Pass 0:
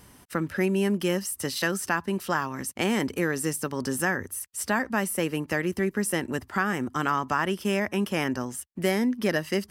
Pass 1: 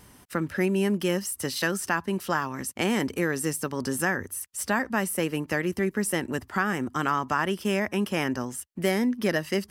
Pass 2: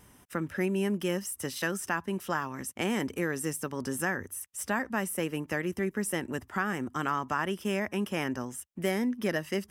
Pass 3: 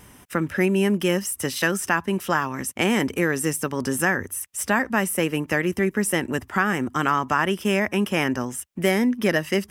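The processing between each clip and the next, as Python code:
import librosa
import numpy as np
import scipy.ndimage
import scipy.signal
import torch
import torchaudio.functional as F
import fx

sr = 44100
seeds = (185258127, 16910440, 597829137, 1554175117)

y1 = fx.vibrato(x, sr, rate_hz=5.9, depth_cents=26.0)
y2 = fx.peak_eq(y1, sr, hz=4400.0, db=-9.5, octaves=0.23)
y2 = y2 * librosa.db_to_amplitude(-4.5)
y3 = fx.peak_eq(y2, sr, hz=2400.0, db=2.5, octaves=0.77)
y3 = y3 * librosa.db_to_amplitude(8.5)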